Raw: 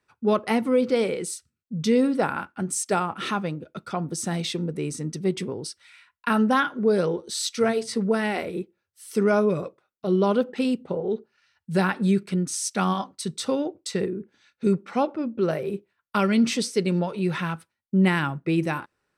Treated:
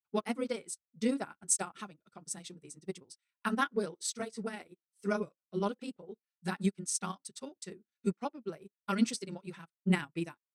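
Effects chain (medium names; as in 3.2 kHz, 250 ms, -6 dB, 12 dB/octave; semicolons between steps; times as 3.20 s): granular stretch 0.55×, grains 61 ms; graphic EQ 125/500/8000 Hz -4/-4/+8 dB; upward expansion 2.5:1, over -40 dBFS; trim -2 dB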